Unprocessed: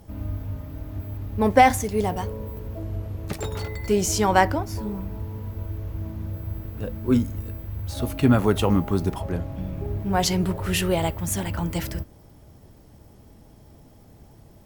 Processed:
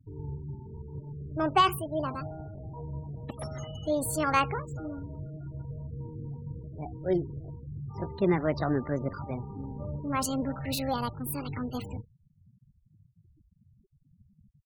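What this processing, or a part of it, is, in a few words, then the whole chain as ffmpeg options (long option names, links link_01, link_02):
chipmunk voice: -filter_complex "[0:a]asettb=1/sr,asplit=3[link_01][link_02][link_03];[link_01]atrim=end=7.884[link_04];[link_02]atrim=start=7.88:end=8.81,asetpts=PTS-STARTPTS,afade=type=in:duration=0.004:curve=qsin,afade=type=out:start_time=0.926:duration=0.004:curve=qsin,aemphasis=mode=reproduction:type=75kf[link_05];[link_03]atrim=start=8.806[link_06];[link_04][link_05]acrossfade=duration=0.004:curve1=hsin:curve2=qsin[link_07];[link_07][link_06]acrossfade=duration=0.004:curve1=qsin:curve2=hsin,asetrate=64194,aresample=44100,atempo=0.686977,afftfilt=real='re*gte(hypot(re,im),0.0224)':imag='im*gte(hypot(re,im),0.0224)':win_size=1024:overlap=0.75,volume=-7.5dB"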